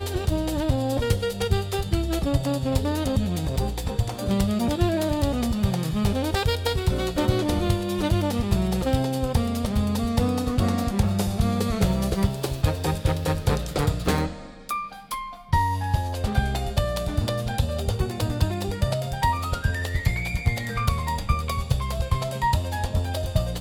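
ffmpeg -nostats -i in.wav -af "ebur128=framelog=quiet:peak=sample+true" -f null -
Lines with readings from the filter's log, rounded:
Integrated loudness:
  I:         -25.2 LUFS
  Threshold: -35.2 LUFS
Loudness range:
  LRA:         2.2 LU
  Threshold: -45.2 LUFS
  LRA low:   -26.4 LUFS
  LRA high:  -24.2 LUFS
Sample peak:
  Peak:       -7.2 dBFS
True peak:
  Peak:       -7.2 dBFS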